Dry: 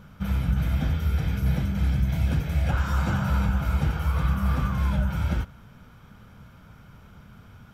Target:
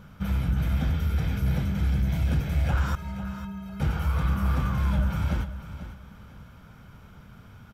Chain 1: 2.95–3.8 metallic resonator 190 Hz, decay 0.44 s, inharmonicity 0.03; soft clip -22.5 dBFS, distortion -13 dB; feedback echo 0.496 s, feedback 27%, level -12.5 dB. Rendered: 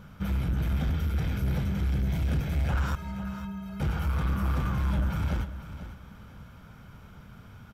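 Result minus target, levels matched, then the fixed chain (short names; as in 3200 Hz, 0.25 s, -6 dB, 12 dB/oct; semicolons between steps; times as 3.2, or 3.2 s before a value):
soft clip: distortion +9 dB
2.95–3.8 metallic resonator 190 Hz, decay 0.44 s, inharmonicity 0.03; soft clip -15.5 dBFS, distortion -22 dB; feedback echo 0.496 s, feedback 27%, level -12.5 dB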